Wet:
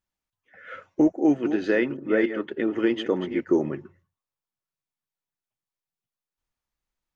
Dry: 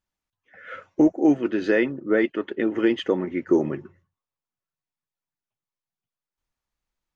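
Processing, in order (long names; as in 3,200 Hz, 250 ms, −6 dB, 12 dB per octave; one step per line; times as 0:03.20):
0:01.11–0:03.41: delay that plays each chunk backwards 287 ms, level −10 dB
level −2 dB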